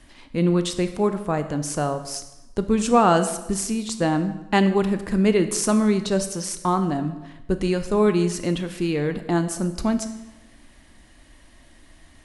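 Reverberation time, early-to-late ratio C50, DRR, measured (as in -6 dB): 1.0 s, 11.5 dB, 9.5 dB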